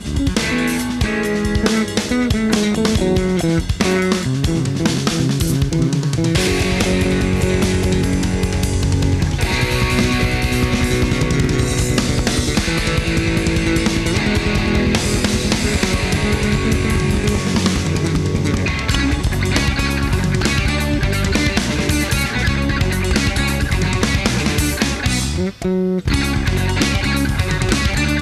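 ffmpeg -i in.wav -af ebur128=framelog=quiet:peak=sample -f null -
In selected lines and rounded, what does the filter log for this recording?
Integrated loudness:
  I:         -17.3 LUFS
  Threshold: -27.3 LUFS
Loudness range:
  LRA:         0.8 LU
  Threshold: -37.2 LUFS
  LRA low:   -17.7 LUFS
  LRA high:  -16.9 LUFS
Sample peak:
  Peak:       -2.0 dBFS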